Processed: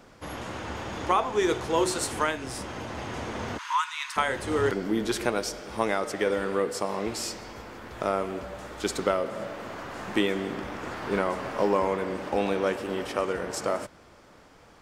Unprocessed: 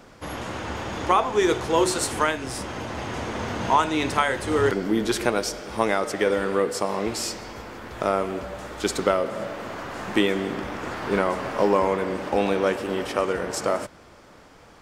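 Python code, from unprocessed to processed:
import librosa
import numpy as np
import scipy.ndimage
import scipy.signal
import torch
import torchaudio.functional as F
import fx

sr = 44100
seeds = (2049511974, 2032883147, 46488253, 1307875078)

y = fx.steep_highpass(x, sr, hz=950.0, slope=96, at=(3.57, 4.16), fade=0.02)
y = y * librosa.db_to_amplitude(-4.0)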